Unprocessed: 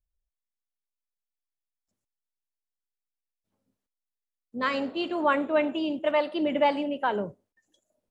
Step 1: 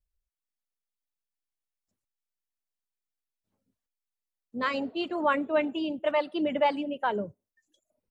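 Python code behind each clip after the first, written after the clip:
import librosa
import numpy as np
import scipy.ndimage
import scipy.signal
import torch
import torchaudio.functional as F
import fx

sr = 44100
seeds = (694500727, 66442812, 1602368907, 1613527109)

y = fx.dereverb_blind(x, sr, rt60_s=0.64)
y = fx.low_shelf(y, sr, hz=210.0, db=3.0)
y = y * librosa.db_to_amplitude(-1.5)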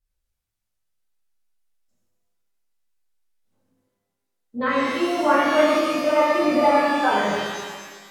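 y = fx.env_lowpass_down(x, sr, base_hz=2100.0, full_db=-26.0)
y = fx.rev_shimmer(y, sr, seeds[0], rt60_s=1.6, semitones=12, shimmer_db=-8, drr_db=-8.0)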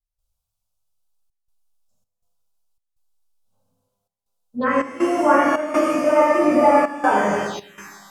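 y = fx.env_phaser(x, sr, low_hz=320.0, high_hz=3900.0, full_db=-21.0)
y = fx.step_gate(y, sr, bpm=81, pattern='.xxxxxx.xxx.xxx', floor_db=-12.0, edge_ms=4.5)
y = y * librosa.db_to_amplitude(3.5)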